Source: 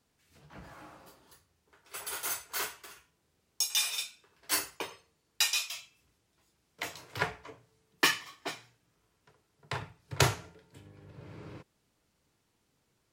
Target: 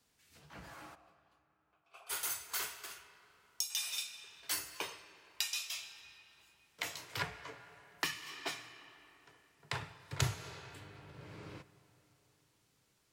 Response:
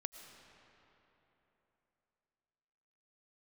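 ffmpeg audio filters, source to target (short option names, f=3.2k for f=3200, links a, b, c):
-filter_complex "[0:a]asplit=3[a][b][c];[a]afade=t=out:st=0.94:d=0.02[d];[b]asplit=3[e][f][g];[e]bandpass=f=730:t=q:w=8,volume=0dB[h];[f]bandpass=f=1.09k:t=q:w=8,volume=-6dB[i];[g]bandpass=f=2.44k:t=q:w=8,volume=-9dB[j];[h][i][j]amix=inputs=3:normalize=0,afade=t=in:st=0.94:d=0.02,afade=t=out:st=2.09:d=0.02[k];[c]afade=t=in:st=2.09:d=0.02[l];[d][k][l]amix=inputs=3:normalize=0,tiltshelf=f=1.2k:g=-3.5,asplit=2[m][n];[1:a]atrim=start_sample=2205[o];[n][o]afir=irnorm=-1:irlink=0,volume=-4dB[p];[m][p]amix=inputs=2:normalize=0,acrossover=split=200[q][r];[r]acompressor=threshold=-31dB:ratio=6[s];[q][s]amix=inputs=2:normalize=0,volume=-3.5dB"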